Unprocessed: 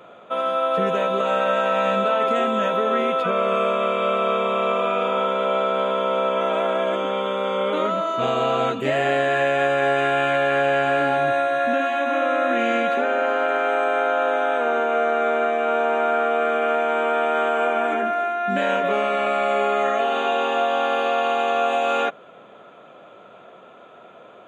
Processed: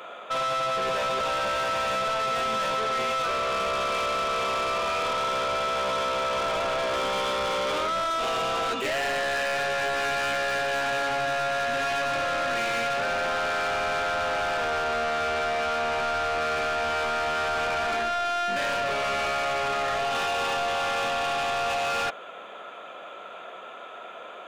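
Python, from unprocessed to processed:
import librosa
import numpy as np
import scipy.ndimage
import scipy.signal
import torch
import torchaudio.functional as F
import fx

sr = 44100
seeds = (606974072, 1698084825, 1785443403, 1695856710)

p1 = fx.highpass(x, sr, hz=1200.0, slope=6)
p2 = fx.over_compress(p1, sr, threshold_db=-29.0, ratio=-0.5)
p3 = p1 + (p2 * 10.0 ** (-2.5 / 20.0))
p4 = 10.0 ** (-27.5 / 20.0) * np.tanh(p3 / 10.0 ** (-27.5 / 20.0))
y = p4 * 10.0 ** (3.0 / 20.0)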